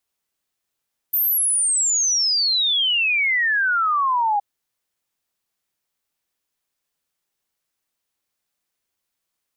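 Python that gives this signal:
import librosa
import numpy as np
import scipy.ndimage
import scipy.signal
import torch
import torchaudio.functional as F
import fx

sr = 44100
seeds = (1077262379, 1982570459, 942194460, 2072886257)

y = fx.ess(sr, length_s=3.27, from_hz=14000.0, to_hz=800.0, level_db=-16.5)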